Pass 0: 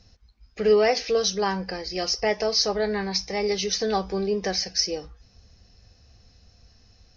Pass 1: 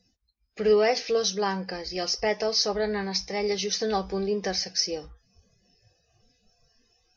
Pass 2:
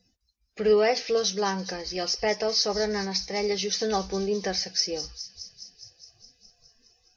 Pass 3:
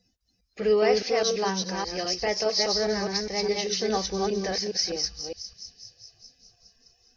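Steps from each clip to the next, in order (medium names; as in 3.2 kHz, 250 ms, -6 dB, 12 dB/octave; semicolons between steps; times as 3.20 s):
spectral noise reduction 19 dB; trim -2 dB
feedback echo behind a high-pass 207 ms, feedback 72%, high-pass 5 kHz, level -8 dB
chunks repeated in reverse 205 ms, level -2.5 dB; trim -1.5 dB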